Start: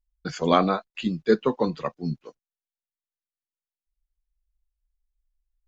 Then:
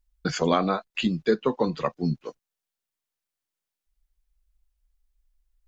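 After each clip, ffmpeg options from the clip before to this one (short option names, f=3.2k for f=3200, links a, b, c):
-af "acompressor=threshold=-30dB:ratio=2.5,volume=7dB"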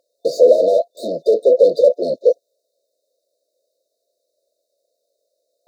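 -filter_complex "[0:a]asplit=2[a][b];[b]highpass=f=720:p=1,volume=37dB,asoftclip=type=tanh:threshold=-7.5dB[c];[a][c]amix=inputs=2:normalize=0,lowpass=f=1k:p=1,volume=-6dB,highpass=f=530:t=q:w=6.3,afftfilt=real='re*(1-between(b*sr/4096,690,3600))':imag='im*(1-between(b*sr/4096,690,3600))':win_size=4096:overlap=0.75,volume=-3dB"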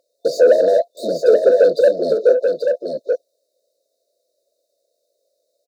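-af "asoftclip=type=tanh:threshold=-4.5dB,aecho=1:1:834:0.531,volume=1dB"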